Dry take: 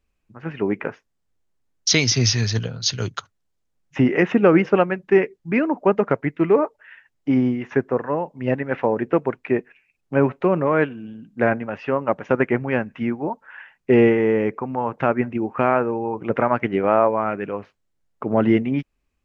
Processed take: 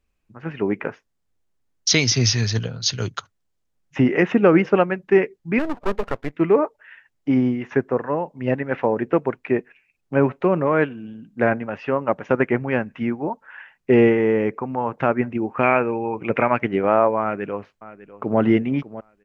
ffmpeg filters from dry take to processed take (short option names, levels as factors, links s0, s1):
-filter_complex "[0:a]asplit=3[s0][s1][s2];[s0]afade=t=out:st=5.58:d=0.02[s3];[s1]aeval=exprs='max(val(0),0)':c=same,afade=t=in:st=5.58:d=0.02,afade=t=out:st=6.33:d=0.02[s4];[s2]afade=t=in:st=6.33:d=0.02[s5];[s3][s4][s5]amix=inputs=3:normalize=0,asettb=1/sr,asplit=3[s6][s7][s8];[s6]atrim=end=15.634[s9];[s7]atrim=start=15.63:end=16.59,asetpts=PTS-STARTPTS,afade=t=in:d=0.004:c=qsin,afade=t=out:st=0.956:d=0.004:c=qsin,equalizer=f=2400:w=3.3:g=13[s10];[s8]atrim=start=16.586[s11];[s9][s10]acrossfade=d=0.004:c1=hsin:c2=qsin[s12];[s12][s11]acrossfade=d=0.004:c1=qsin:c2=hsin,asplit=2[s13][s14];[s14]afade=t=in:st=17.21:d=0.01,afade=t=out:st=18.4:d=0.01,aecho=0:1:600|1200|1800:0.158489|0.0554713|0.0194149[s15];[s13][s15]amix=inputs=2:normalize=0"